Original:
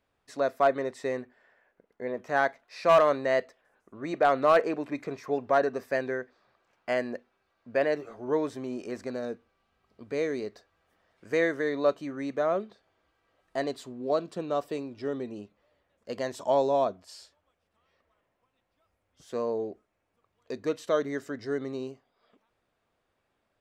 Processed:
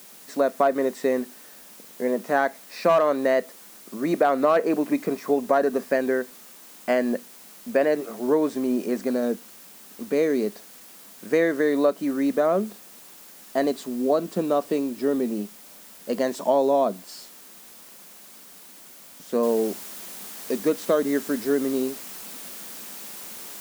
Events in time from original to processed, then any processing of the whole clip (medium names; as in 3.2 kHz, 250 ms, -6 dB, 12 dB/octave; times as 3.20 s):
19.43 s: noise floor step -54 dB -46 dB
whole clip: peaking EQ 2.9 kHz -3.5 dB 2.4 oct; compression 3:1, threshold -26 dBFS; resonant low shelf 150 Hz -9 dB, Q 3; trim +8 dB